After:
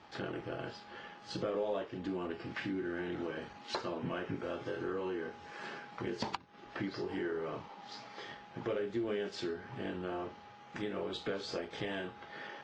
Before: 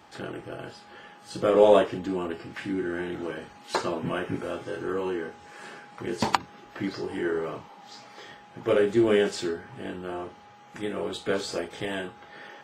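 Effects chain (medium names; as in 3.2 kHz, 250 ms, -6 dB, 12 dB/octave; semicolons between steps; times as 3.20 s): compression 4:1, threshold -34 dBFS, peak gain reduction 18 dB; waveshaping leveller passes 1; low-pass 5.7 kHz 24 dB/octave; trim -5 dB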